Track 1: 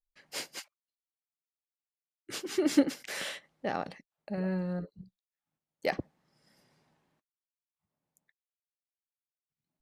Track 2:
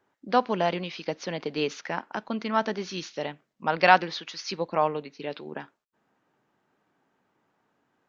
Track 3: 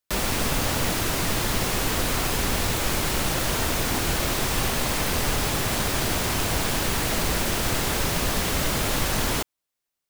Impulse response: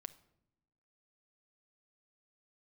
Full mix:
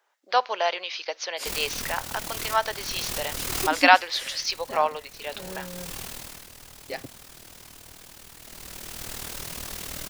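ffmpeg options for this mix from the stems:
-filter_complex "[0:a]aecho=1:1:7.5:0.94,adelay=1050,volume=-8dB[a];[1:a]highpass=f=530:w=0.5412,highpass=f=530:w=1.3066,volume=1dB,asplit=2[b][c];[2:a]tremolo=f=39:d=0.75,adelay=1350,volume=9dB,afade=t=out:st=3.56:d=0.45:silence=0.281838,afade=t=out:st=6.03:d=0.45:silence=0.298538,afade=t=in:st=8.39:d=0.77:silence=0.281838[d];[c]apad=whole_len=504670[e];[d][e]sidechaincompress=threshold=-37dB:ratio=4:attack=6.4:release=562[f];[a][b][f]amix=inputs=3:normalize=0,highshelf=f=2.8k:g=9"

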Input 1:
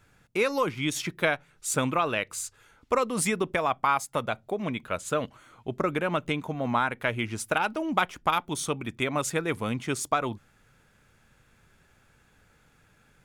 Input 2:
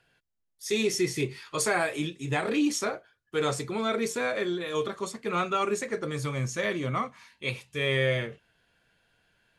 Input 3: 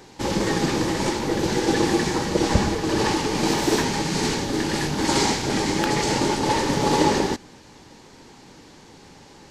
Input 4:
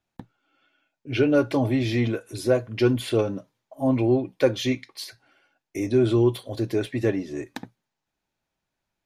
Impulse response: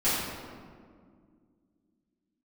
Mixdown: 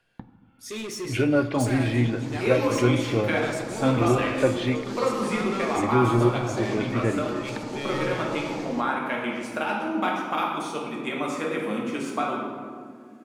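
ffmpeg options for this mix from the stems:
-filter_complex "[0:a]acrossover=split=4800[a][b];[b]acompressor=threshold=-42dB:ratio=4:attack=1:release=60[c];[a][c]amix=inputs=2:normalize=0,highpass=f=180:w=0.5412,highpass=f=180:w=1.3066,adelay=2050,volume=-8dB,asplit=2[d][e];[e]volume=-6.5dB[f];[1:a]asoftclip=type=tanh:threshold=-27dB,volume=-3.5dB,asplit=2[g][h];[h]volume=-19dB[i];[2:a]adelay=1450,volume=-20dB,asplit=2[j][k];[k]volume=-15dB[l];[3:a]lowpass=2.6k,equalizer=f=430:t=o:w=0.98:g=-5.5,volume=0.5dB,asplit=3[m][n][o];[n]volume=-23dB[p];[o]apad=whole_len=482974[q];[j][q]sidechaincompress=threshold=-37dB:ratio=8:attack=16:release=156[r];[4:a]atrim=start_sample=2205[s];[f][i][l][p]amix=inputs=4:normalize=0[t];[t][s]afir=irnorm=-1:irlink=0[u];[d][g][r][m][u]amix=inputs=5:normalize=0"

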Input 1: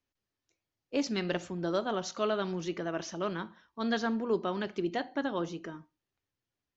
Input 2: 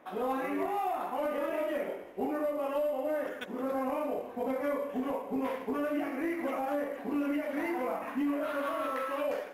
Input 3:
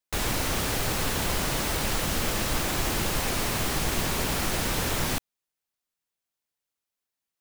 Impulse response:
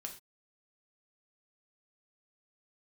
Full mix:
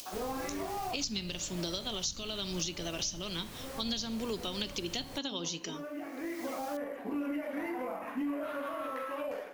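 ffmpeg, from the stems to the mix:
-filter_complex "[0:a]alimiter=level_in=1dB:limit=-24dB:level=0:latency=1:release=176,volume=-1dB,acompressor=mode=upward:threshold=-50dB:ratio=2.5,aexciter=amount=9.7:drive=6.7:freq=2.5k,volume=0dB,asplit=2[a][b];[1:a]volume=-2dB[c];[2:a]volume=-18.5dB[d];[b]apad=whole_len=420707[e];[c][e]sidechaincompress=threshold=-37dB:ratio=8:attack=37:release=1270[f];[a][f][d]amix=inputs=3:normalize=0,acrossover=split=230[g][h];[h]acompressor=threshold=-34dB:ratio=6[i];[g][i]amix=inputs=2:normalize=0"

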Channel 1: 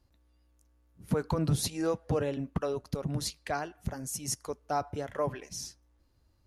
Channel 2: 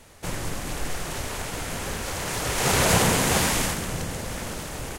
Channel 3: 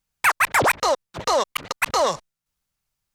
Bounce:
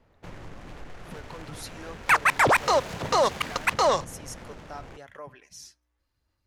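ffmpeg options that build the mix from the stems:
-filter_complex "[0:a]aphaser=in_gain=1:out_gain=1:delay=3.2:decay=0.27:speed=0.95:type=sinusoidal,alimiter=limit=-23.5dB:level=0:latency=1:release=452,equalizer=f=1.9k:t=o:w=2.5:g=10,volume=-11.5dB[a];[1:a]acompressor=threshold=-27dB:ratio=2.5,equalizer=f=8.9k:t=o:w=0.24:g=-7,adynamicsmooth=sensitivity=5:basefreq=1.5k,volume=-9.5dB[b];[2:a]aemphasis=mode=reproduction:type=50fm,adelay=1850,volume=-1.5dB[c];[a][b][c]amix=inputs=3:normalize=0,highshelf=f=4.7k:g=5.5"

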